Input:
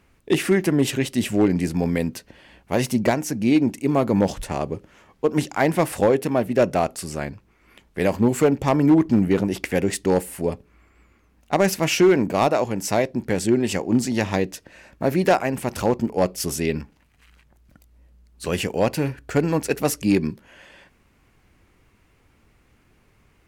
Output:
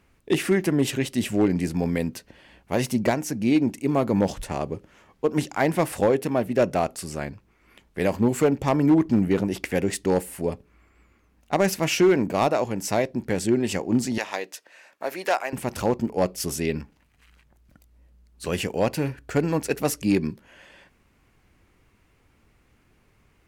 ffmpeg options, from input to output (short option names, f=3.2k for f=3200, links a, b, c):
-filter_complex "[0:a]asettb=1/sr,asplit=3[a][b][c];[a]atrim=end=14.184[d];[b]atrim=start=14.18:end=15.53,asetpts=PTS-STARTPTS,afade=t=in:d=0.004:c=qsin,afade=t=out:st=1.346:d=0.004:c=qsin,highpass=640[e];[c]atrim=start=15.526[f];[d][e]acrossfade=d=0.004:c1=hsin:c2=qsin[g];[g][f]acrossfade=d=0.004:c1=qsin:c2=hsin,volume=-2.5dB"